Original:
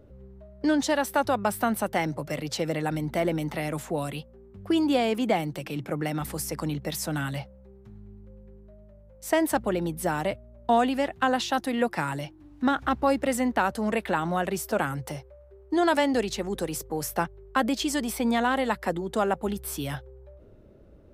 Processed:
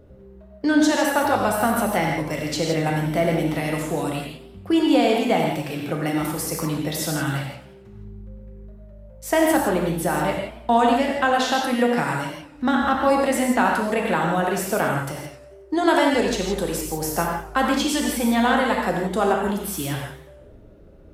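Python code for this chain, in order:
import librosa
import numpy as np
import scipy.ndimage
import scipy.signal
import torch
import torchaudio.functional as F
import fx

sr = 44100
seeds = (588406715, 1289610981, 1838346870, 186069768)

y = fx.rev_gated(x, sr, seeds[0], gate_ms=190, shape='flat', drr_db=-0.5)
y = fx.echo_warbled(y, sr, ms=90, feedback_pct=52, rate_hz=2.8, cents=175, wet_db=-14.5)
y = y * 10.0 ** (2.5 / 20.0)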